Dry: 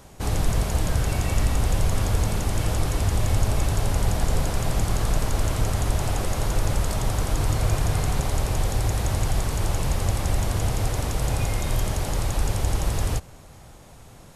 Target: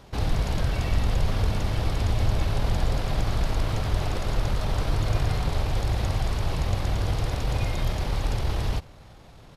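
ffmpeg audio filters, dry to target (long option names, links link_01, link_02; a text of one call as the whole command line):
ffmpeg -i in.wav -af "atempo=1.5,highshelf=frequency=5800:width_type=q:width=1.5:gain=-8.5,volume=-1.5dB" out.wav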